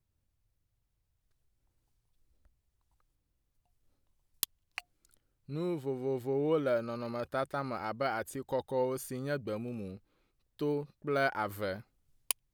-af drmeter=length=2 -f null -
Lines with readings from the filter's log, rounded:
Channel 1: DR: 17.1
Overall DR: 17.1